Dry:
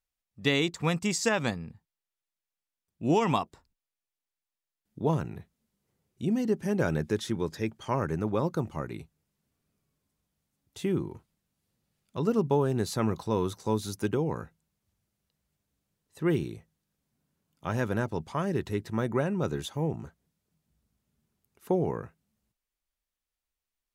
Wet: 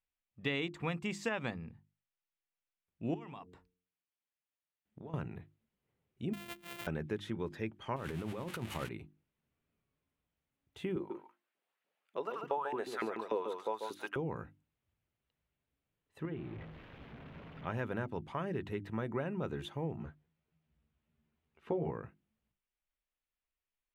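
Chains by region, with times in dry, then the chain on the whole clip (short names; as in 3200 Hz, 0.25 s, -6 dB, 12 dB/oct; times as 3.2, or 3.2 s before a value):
3.14–5.14 de-hum 90.26 Hz, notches 5 + compressor 12:1, threshold -39 dBFS + HPF 45 Hz
6.33–6.87 sample sorter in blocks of 128 samples + pre-emphasis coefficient 0.9
7.96–8.89 switching spikes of -23 dBFS + LPF 11000 Hz + negative-ratio compressor -33 dBFS
10.96–14.16 LFO high-pass saw up 3.4 Hz 340–1900 Hz + echo 0.141 s -7.5 dB
16.25–17.67 zero-crossing step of -37 dBFS + compressor 2.5:1, threshold -35 dBFS + air absorption 290 m
19.97–21.91 LPF 5200 Hz + doubler 13 ms -2 dB
whole clip: resonant high shelf 3900 Hz -10.5 dB, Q 1.5; notches 50/100/150/200/250/300/350 Hz; compressor 2:1, threshold -31 dBFS; gain -4.5 dB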